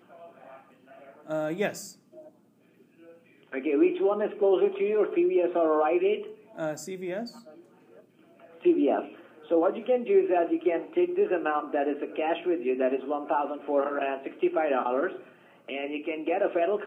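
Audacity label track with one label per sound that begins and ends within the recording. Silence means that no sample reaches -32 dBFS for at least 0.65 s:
1.300000	1.820000	sound
3.530000	7.250000	sound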